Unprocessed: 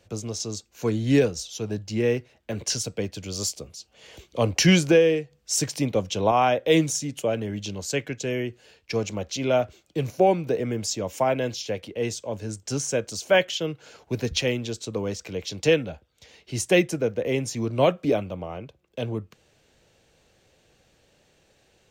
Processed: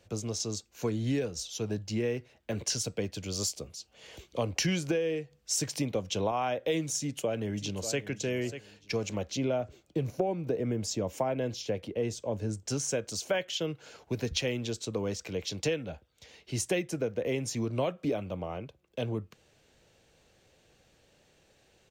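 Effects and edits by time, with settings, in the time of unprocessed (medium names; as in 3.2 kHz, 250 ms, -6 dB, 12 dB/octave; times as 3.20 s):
6.98–8.02 s: echo throw 590 ms, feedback 25%, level -14 dB
9.31–12.68 s: tilt shelf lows +4 dB
whole clip: compression 6:1, threshold -24 dBFS; trim -2.5 dB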